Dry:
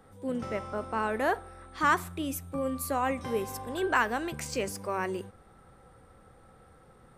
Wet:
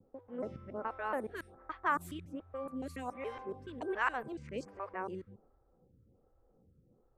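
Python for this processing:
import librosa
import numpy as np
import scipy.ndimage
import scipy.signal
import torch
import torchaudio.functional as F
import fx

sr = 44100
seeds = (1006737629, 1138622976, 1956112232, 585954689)

y = fx.local_reverse(x, sr, ms=141.0)
y = fx.env_lowpass(y, sr, base_hz=370.0, full_db=-24.0)
y = fx.dynamic_eq(y, sr, hz=4900.0, q=1.6, threshold_db=-53.0, ratio=4.0, max_db=-4)
y = fx.stagger_phaser(y, sr, hz=1.3)
y = y * 10.0 ** (-5.5 / 20.0)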